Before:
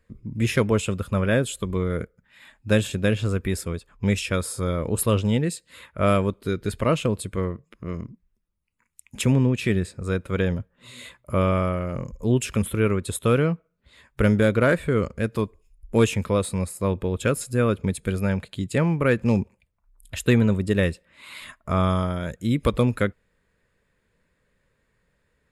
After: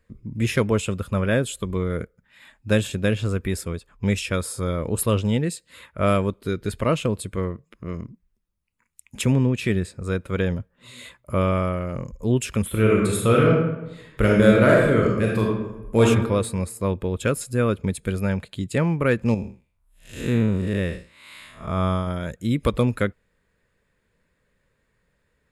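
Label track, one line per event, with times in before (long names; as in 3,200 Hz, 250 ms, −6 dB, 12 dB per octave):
12.680000	16.040000	thrown reverb, RT60 1 s, DRR −2.5 dB
19.340000	22.070000	spectrum smeared in time width 181 ms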